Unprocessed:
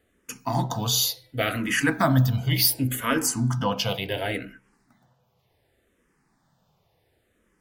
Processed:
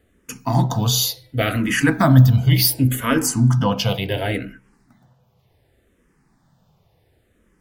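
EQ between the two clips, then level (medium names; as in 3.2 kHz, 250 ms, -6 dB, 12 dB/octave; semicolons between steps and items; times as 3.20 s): bass shelf 270 Hz +8 dB; +3.0 dB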